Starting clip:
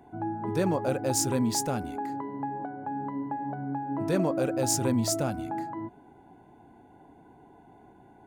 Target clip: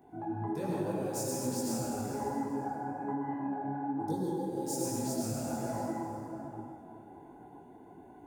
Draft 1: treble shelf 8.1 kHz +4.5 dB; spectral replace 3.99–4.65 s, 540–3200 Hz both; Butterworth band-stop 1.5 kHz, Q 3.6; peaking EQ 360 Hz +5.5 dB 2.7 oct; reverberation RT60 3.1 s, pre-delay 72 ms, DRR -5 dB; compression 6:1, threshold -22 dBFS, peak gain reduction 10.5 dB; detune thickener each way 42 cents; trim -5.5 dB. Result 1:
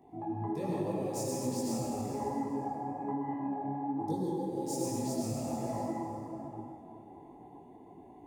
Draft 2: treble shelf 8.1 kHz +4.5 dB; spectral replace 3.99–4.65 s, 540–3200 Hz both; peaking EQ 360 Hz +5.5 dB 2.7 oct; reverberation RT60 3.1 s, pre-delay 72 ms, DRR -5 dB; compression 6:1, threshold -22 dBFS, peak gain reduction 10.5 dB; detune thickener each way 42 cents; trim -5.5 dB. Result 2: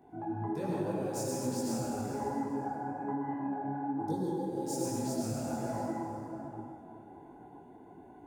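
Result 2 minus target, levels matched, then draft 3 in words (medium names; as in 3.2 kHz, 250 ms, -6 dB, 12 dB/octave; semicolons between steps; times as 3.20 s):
8 kHz band -2.5 dB
treble shelf 8.1 kHz +11.5 dB; spectral replace 3.99–4.65 s, 540–3200 Hz both; peaking EQ 360 Hz +5.5 dB 2.7 oct; reverberation RT60 3.1 s, pre-delay 72 ms, DRR -5 dB; compression 6:1, threshold -22 dBFS, peak gain reduction 10.5 dB; detune thickener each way 42 cents; trim -5.5 dB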